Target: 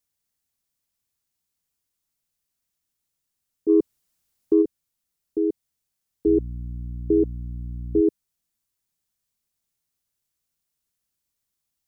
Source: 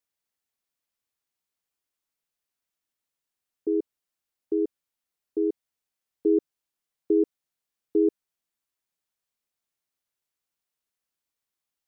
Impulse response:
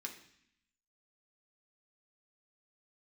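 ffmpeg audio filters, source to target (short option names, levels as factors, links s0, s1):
-filter_complex "[0:a]asettb=1/sr,asplit=3[s0][s1][s2];[s0]atrim=end=6.264[s3];[s1]atrim=start=6.26:end=8.01,asetpts=PTS-STARTPTS,afade=t=in:d=0.004:c=qsin,afade=t=out:st=1.746:d=0.004:c=qsin,aeval=exprs='val(0)+0.00891*(sin(2*PI*60*n/s)+sin(2*PI*2*60*n/s)/2+sin(2*PI*3*60*n/s)/3+sin(2*PI*4*60*n/s)/4+sin(2*PI*5*60*n/s)/5)':c=same[s4];[s2]atrim=start=8.006[s5];[s3][s4]acrossfade=d=0.004:c1=hsin:c2=qsin[s6];[s6][s5]acrossfade=d=0.004:c1=qsin:c2=hsin,bass=f=250:g=11,treble=f=4000:g=7,asplit=3[s7][s8][s9];[s7]afade=t=out:st=3.68:d=0.02[s10];[s8]acontrast=51,afade=t=in:st=3.68:d=0.02,afade=t=out:st=4.61:d=0.02[s11];[s9]afade=t=in:st=4.61:d=0.02[s12];[s10][s11][s12]amix=inputs=3:normalize=0"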